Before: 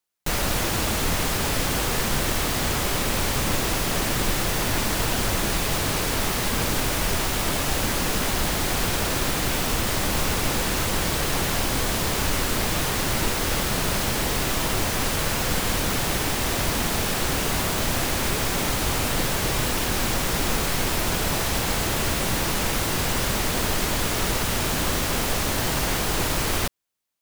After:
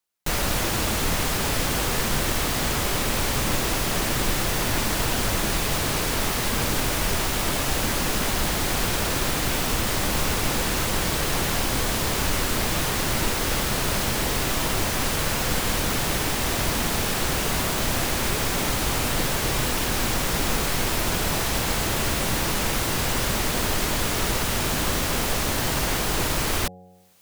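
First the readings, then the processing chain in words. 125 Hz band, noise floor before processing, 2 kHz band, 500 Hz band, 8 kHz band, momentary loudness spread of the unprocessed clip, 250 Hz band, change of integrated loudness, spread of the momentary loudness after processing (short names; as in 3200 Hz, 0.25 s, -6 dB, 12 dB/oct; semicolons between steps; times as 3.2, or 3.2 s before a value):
-0.5 dB, -25 dBFS, 0.0 dB, -0.5 dB, 0.0 dB, 0 LU, -0.5 dB, 0.0 dB, 0 LU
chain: de-hum 91.15 Hz, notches 9; reverse; upward compressor, threshold -39 dBFS; reverse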